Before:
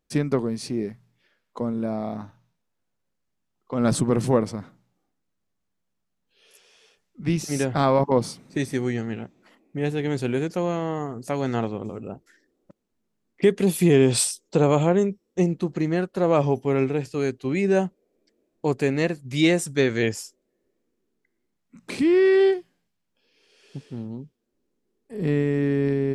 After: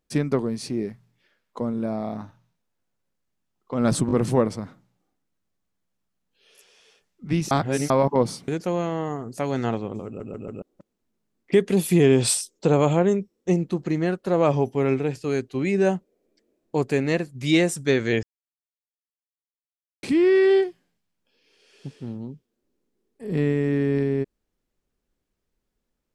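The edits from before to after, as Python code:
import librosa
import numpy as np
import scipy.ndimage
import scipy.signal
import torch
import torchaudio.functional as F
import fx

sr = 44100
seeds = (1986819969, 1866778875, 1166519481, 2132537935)

y = fx.edit(x, sr, fx.stutter(start_s=4.07, slice_s=0.02, count=3),
    fx.reverse_span(start_s=7.47, length_s=0.39),
    fx.cut(start_s=8.44, length_s=1.94),
    fx.stutter_over(start_s=11.96, slice_s=0.14, count=4),
    fx.silence(start_s=20.13, length_s=1.8), tone=tone)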